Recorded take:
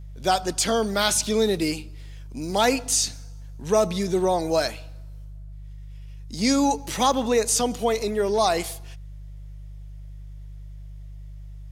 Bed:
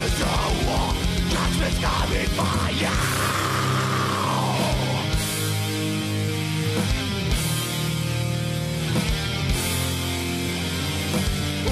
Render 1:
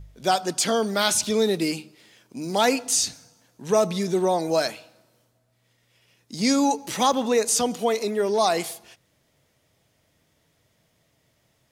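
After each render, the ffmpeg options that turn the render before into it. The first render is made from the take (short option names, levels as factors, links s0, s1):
-af "bandreject=f=50:t=h:w=4,bandreject=f=100:t=h:w=4,bandreject=f=150:t=h:w=4"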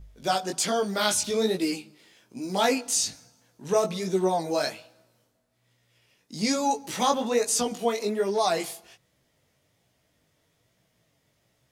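-af "flanger=delay=15.5:depth=5.8:speed=1.2"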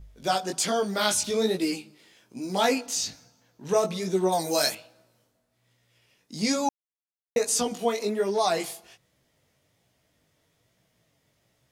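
-filter_complex "[0:a]asettb=1/sr,asplit=3[s0][s1][s2];[s0]atrim=end=2.864[s3];[s1]atrim=start=2.86:end=3.69,asetpts=PTS-STARTPTS,afade=t=in:d=0.004:c=qsin,afade=t=out:st=0.826:d=0.004:c=qsin,equalizer=f=9400:w=1.6:g=-10.5[s4];[s2]atrim=start=3.686[s5];[s3][s4]acrossfade=d=0.004:c1=hsin:c2=qsin[s6];[s6][s5]acrossfade=d=0.004:c1=qsin:c2=hsin,asettb=1/sr,asplit=3[s7][s8][s9];[s7]atrim=end=4.324[s10];[s8]atrim=start=4.32:end=4.75,asetpts=PTS-STARTPTS,afade=t=in:d=0.004:c=qsin,afade=t=out:st=0.426:d=0.004:c=qsin,aemphasis=mode=production:type=75kf[s11];[s9]atrim=start=4.746[s12];[s10][s11]acrossfade=d=0.004:c1=hsin:c2=qsin[s13];[s13][s12]acrossfade=d=0.004:c1=qsin:c2=hsin,asplit=3[s14][s15][s16];[s14]atrim=end=6.69,asetpts=PTS-STARTPTS,afade=t=out:st=6.686:d=0.004:c=hsin[s17];[s15]atrim=start=6.69:end=7.36,asetpts=PTS-STARTPTS,volume=0[s18];[s16]atrim=start=7.36,asetpts=PTS-STARTPTS,afade=t=in:d=0.004:c=hsin[s19];[s17][s18][s19]concat=n=3:v=0:a=1"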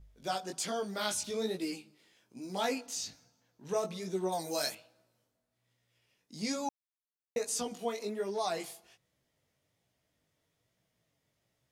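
-af "volume=0.335"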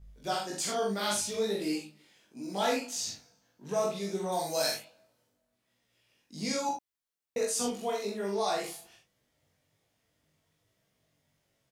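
-filter_complex "[0:a]asplit=2[s0][s1];[s1]adelay=20,volume=0.708[s2];[s0][s2]amix=inputs=2:normalize=0,aecho=1:1:45|78:0.668|0.398"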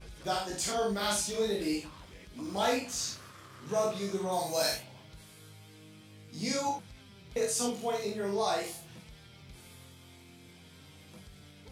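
-filter_complex "[1:a]volume=0.0376[s0];[0:a][s0]amix=inputs=2:normalize=0"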